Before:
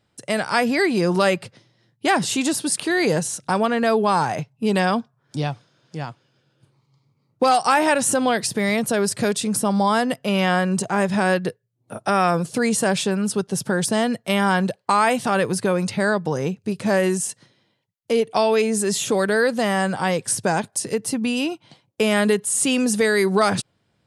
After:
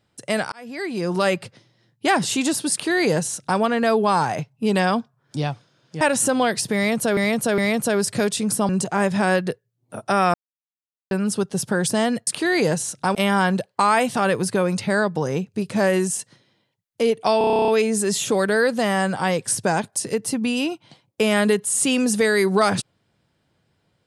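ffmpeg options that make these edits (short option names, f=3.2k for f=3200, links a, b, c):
-filter_complex "[0:a]asplit=20[a][b][c][d][e][f][g][h][i][j][k][l][m][n][o][p][q][r][s][t];[a]atrim=end=0.52,asetpts=PTS-STARTPTS,afade=t=out:st=0.516:d=0.004:c=hsin[u];[b]atrim=start=0.52:end=6.012,asetpts=PTS-STARTPTS,afade=t=in:d=0.9[v];[c]atrim=start=7.868:end=9.032[w];[d]atrim=start=8.618:end=9.032[x];[e]atrim=start=8.618:end=9.732[y];[f]atrim=start=10.668:end=12.32,asetpts=PTS-STARTPTS,afade=t=out:st=1.648:d=0.004:c=hsin[z];[g]atrim=start=12.32:end=13.09,asetpts=PTS-STARTPTS,volume=0[aa];[h]atrim=start=13.09:end=14.252,asetpts=PTS-STARTPTS,afade=t=in:d=0.004:c=hsin[ab];[i]atrim=start=2.718:end=3.602[ac];[j]atrim=start=14.248:end=18.512[ad];[k]atrim=start=18.478:end=18.512[ae];[l]atrim=start=18.478:end=18.512[af];[m]atrim=start=18.478:end=18.512[ag];[n]atrim=start=18.478:end=18.512[ah];[o]atrim=start=18.478:end=18.512[ai];[p]atrim=start=18.478:end=18.512[aj];[q]atrim=start=18.478:end=18.512[ak];[r]atrim=start=18.478:end=18.512[al];[s]atrim=start=18.478:end=18.512[am];[t]atrim=start=18.478[an];[u][v]concat=n=2:v=0:a=1[ao];[ao][w]acrossfade=d=0.004:c1=hsin:c2=hsin[ap];[ap][x]acrossfade=d=0.004:c1=hsin:c2=hsin[aq];[aq][y]acrossfade=d=0.004:c1=hsin:c2=hsin[ar];[z][aa][ab]concat=n=3:v=0:a=1[as];[ar][as]acrossfade=d=0.004:c1=hsin:c2=hsin[at];[at][ac]acrossfade=d=0.004:c1=hsin:c2=hsin[au];[au][ad]acrossfade=d=0.004:c1=hsin:c2=hsin[av];[av][ae]acrossfade=d=0.004:c1=hsin:c2=hsin[aw];[aw][af]acrossfade=d=0.004:c1=hsin:c2=hsin[ax];[ax][ag]acrossfade=d=0.004:c1=hsin:c2=hsin[ay];[ay][ah]acrossfade=d=0.004:c1=hsin:c2=hsin[az];[az][ai]acrossfade=d=0.004:c1=hsin:c2=hsin[ba];[ba][aj]acrossfade=d=0.004:c1=hsin:c2=hsin[bb];[bb][ak]acrossfade=d=0.004:c1=hsin:c2=hsin[bc];[bc][al]acrossfade=d=0.004:c1=hsin:c2=hsin[bd];[bd][am]acrossfade=d=0.004:c1=hsin:c2=hsin[be];[be][an]acrossfade=d=0.004:c1=hsin:c2=hsin"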